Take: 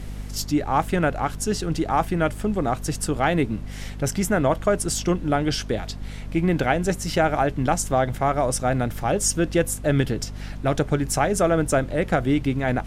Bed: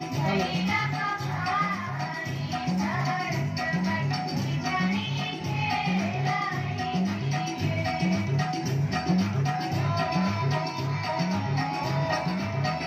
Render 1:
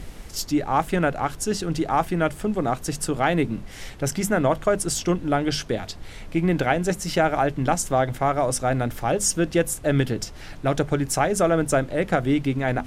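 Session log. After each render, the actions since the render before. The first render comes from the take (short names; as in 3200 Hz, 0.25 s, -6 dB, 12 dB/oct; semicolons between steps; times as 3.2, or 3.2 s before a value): notches 50/100/150/200/250 Hz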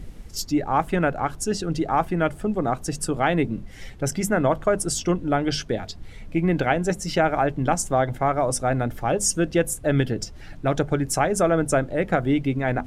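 denoiser 9 dB, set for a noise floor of -39 dBFS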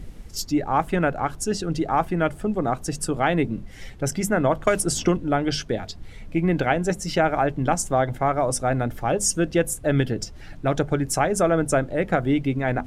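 4.67–5.17 three-band squash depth 100%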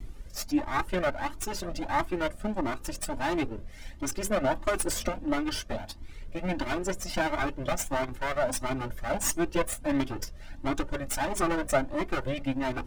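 minimum comb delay 3.3 ms; cascading flanger rising 1.5 Hz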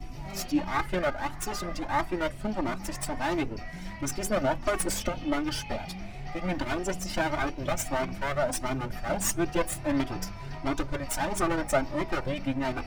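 add bed -15 dB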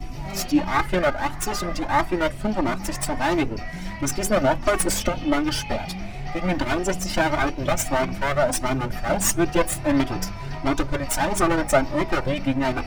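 gain +7 dB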